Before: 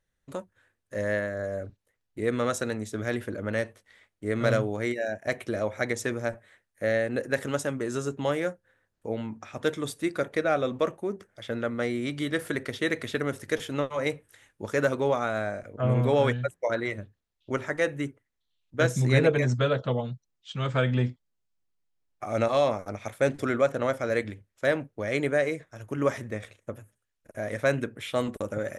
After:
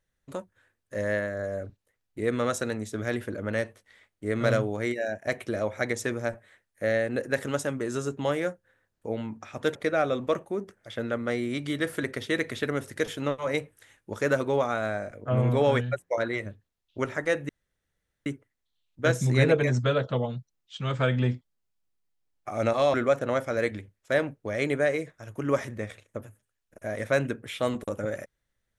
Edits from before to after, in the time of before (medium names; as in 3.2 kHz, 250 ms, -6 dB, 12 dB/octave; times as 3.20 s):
9.75–10.27 s: delete
18.01 s: insert room tone 0.77 s
22.69–23.47 s: delete